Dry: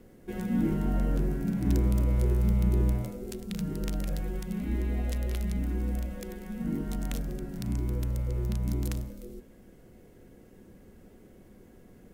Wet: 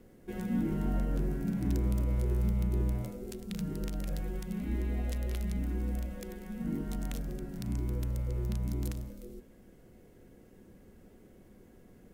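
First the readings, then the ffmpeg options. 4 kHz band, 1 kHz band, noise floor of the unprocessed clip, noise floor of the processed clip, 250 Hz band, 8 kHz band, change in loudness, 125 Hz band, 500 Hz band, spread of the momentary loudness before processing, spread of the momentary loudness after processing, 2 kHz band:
−4.0 dB, −3.5 dB, −55 dBFS, −58 dBFS, −3.5 dB, −4.0 dB, −4.0 dB, −4.0 dB, −4.0 dB, 11 LU, 10 LU, −3.5 dB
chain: -af "alimiter=limit=-18.5dB:level=0:latency=1:release=166,volume=-3dB"

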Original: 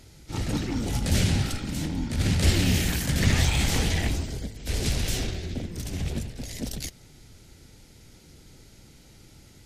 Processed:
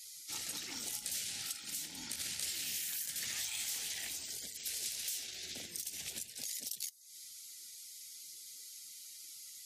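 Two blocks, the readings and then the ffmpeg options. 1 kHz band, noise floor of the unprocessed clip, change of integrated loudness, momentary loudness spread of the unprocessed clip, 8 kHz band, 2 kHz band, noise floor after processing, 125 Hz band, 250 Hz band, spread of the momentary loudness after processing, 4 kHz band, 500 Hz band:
−20.0 dB, −53 dBFS, −12.5 dB, 12 LU, −3.5 dB, −14.0 dB, −52 dBFS, −38.0 dB, −29.0 dB, 12 LU, −8.5 dB, −25.0 dB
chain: -af "aderivative,acompressor=threshold=-50dB:ratio=4,afftdn=noise_reduction=19:noise_floor=-70,volume=10dB"

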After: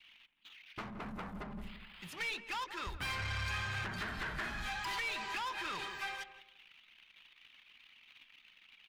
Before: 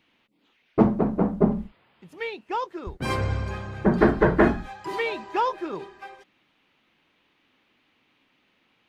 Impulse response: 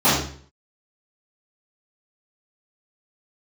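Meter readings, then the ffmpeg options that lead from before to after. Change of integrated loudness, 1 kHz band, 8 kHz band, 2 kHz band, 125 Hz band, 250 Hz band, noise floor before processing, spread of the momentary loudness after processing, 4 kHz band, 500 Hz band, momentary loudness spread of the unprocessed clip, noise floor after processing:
−14.5 dB, −13.0 dB, can't be measured, −5.0 dB, −16.5 dB, −25.0 dB, −68 dBFS, 22 LU, +0.5 dB, −26.0 dB, 15 LU, −65 dBFS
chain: -filter_complex "[0:a]acompressor=threshold=-26dB:ratio=10,crystalizer=i=8.5:c=0,acrossover=split=1100|5200[link_01][link_02][link_03];[link_01]acompressor=threshold=-36dB:ratio=4[link_04];[link_02]acompressor=threshold=-33dB:ratio=4[link_05];[link_03]acompressor=threshold=-54dB:ratio=4[link_06];[link_04][link_05][link_06]amix=inputs=3:normalize=0,bandreject=frequency=75.76:width_type=h:width=4,bandreject=frequency=151.52:width_type=h:width=4,bandreject=frequency=227.28:width_type=h:width=4,bandreject=frequency=303.04:width_type=h:width=4,bandreject=frequency=378.8:width_type=h:width=4,bandreject=frequency=454.56:width_type=h:width=4,bandreject=frequency=530.32:width_type=h:width=4,bandreject=frequency=606.08:width_type=h:width=4,bandreject=frequency=681.84:width_type=h:width=4,asoftclip=type=tanh:threshold=-36.5dB,equalizer=frequency=370:width_type=o:width=2.3:gain=-13,anlmdn=0.000251,bass=frequency=250:gain=-1,treble=frequency=4000:gain=-9,asplit=2[link_07][link_08];[link_08]adelay=169,lowpass=frequency=1000:poles=1,volume=-9dB,asplit=2[link_09][link_10];[link_10]adelay=169,lowpass=frequency=1000:poles=1,volume=0.29,asplit=2[link_11][link_12];[link_12]adelay=169,lowpass=frequency=1000:poles=1,volume=0.29[link_13];[link_07][link_09][link_11][link_13]amix=inputs=4:normalize=0,volume=5.5dB"

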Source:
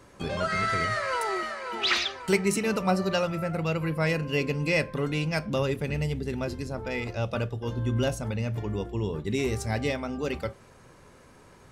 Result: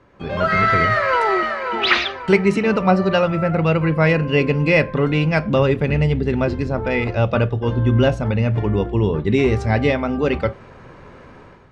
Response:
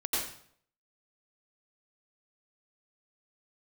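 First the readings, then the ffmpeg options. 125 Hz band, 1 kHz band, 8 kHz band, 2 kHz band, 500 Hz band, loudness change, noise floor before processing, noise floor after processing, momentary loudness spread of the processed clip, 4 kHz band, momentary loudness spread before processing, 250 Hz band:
+11.0 dB, +11.0 dB, can't be measured, +9.5 dB, +10.5 dB, +10.0 dB, −54 dBFS, −43 dBFS, 5 LU, +5.5 dB, 7 LU, +10.5 dB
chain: -af "lowpass=2800,dynaudnorm=framelen=100:gausssize=7:maxgain=12dB"

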